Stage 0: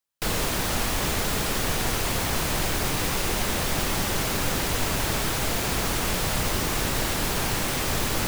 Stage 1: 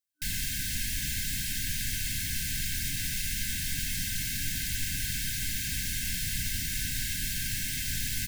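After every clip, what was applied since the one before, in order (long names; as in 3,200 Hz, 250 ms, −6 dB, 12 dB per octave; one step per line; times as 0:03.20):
high-shelf EQ 4,000 Hz +5.5 dB
comb filter 1.9 ms, depth 42%
brick-wall band-stop 300–1,500 Hz
level −8.5 dB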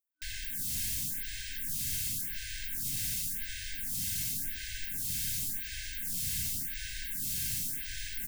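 high-shelf EQ 5,700 Hz +6.5 dB
phaser with staggered stages 0.91 Hz
level −4.5 dB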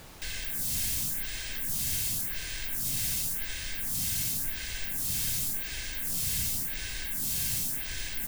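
background noise pink −52 dBFS
level +3.5 dB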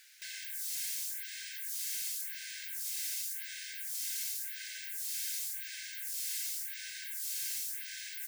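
Chebyshev high-pass with heavy ripple 1,500 Hz, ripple 3 dB
level −4.5 dB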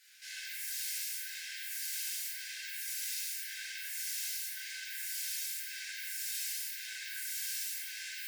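rectangular room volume 150 cubic metres, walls hard, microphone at 1.6 metres
level −7.5 dB
Ogg Vorbis 96 kbit/s 48,000 Hz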